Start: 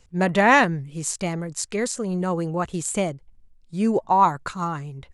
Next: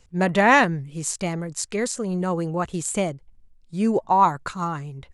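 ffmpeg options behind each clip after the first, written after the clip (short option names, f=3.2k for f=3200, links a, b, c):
-af anull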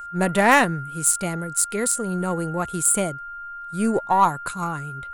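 -af "aeval=exprs='val(0)+0.0251*sin(2*PI*1400*n/s)':c=same,aeval=exprs='0.75*(cos(1*acos(clip(val(0)/0.75,-1,1)))-cos(1*PI/2))+0.0473*(cos(3*acos(clip(val(0)/0.75,-1,1)))-cos(3*PI/2))+0.0119*(cos(8*acos(clip(val(0)/0.75,-1,1)))-cos(8*PI/2))':c=same,aexciter=amount=8.1:drive=3.1:freq=8.3k,volume=1dB"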